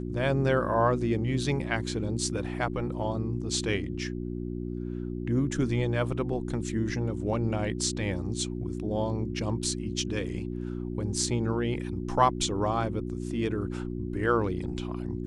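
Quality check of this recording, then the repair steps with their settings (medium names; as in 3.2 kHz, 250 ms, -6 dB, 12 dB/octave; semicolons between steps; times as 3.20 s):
hum 60 Hz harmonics 6 -34 dBFS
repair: de-hum 60 Hz, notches 6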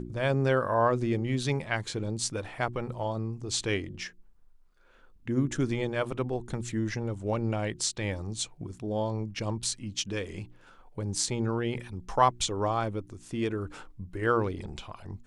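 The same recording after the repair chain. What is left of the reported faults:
nothing left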